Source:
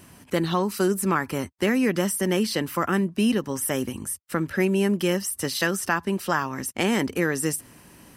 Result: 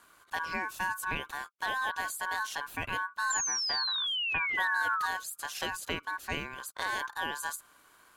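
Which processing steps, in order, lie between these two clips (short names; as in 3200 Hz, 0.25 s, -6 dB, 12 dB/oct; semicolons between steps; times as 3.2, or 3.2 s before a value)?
3.49–4.55 air absorption 180 m; ring modulator 1300 Hz; 3.3–5.06 painted sound fall 1200–7400 Hz -24 dBFS; gain -8 dB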